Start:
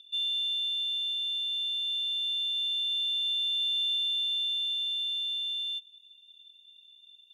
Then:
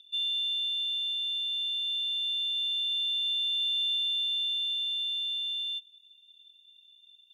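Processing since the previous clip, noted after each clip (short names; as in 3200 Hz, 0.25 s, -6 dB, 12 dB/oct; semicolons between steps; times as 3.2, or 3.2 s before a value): HPF 1300 Hz 12 dB/oct; dynamic EQ 2900 Hz, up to +4 dB, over -41 dBFS, Q 2.4; gain -2 dB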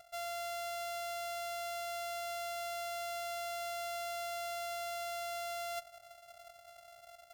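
sample sorter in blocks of 64 samples; reverse; compressor 12:1, threshold -40 dBFS, peak gain reduction 13 dB; reverse; gain +1.5 dB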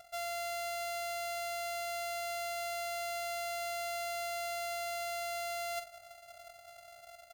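doubler 46 ms -9 dB; gain +2.5 dB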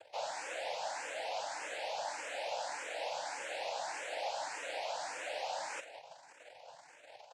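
speakerphone echo 0.16 s, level -11 dB; noise vocoder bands 8; endless phaser +1.7 Hz; gain +1 dB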